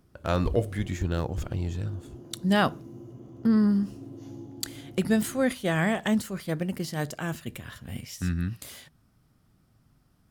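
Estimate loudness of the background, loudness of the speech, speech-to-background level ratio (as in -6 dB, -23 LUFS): -45.5 LUFS, -28.5 LUFS, 17.0 dB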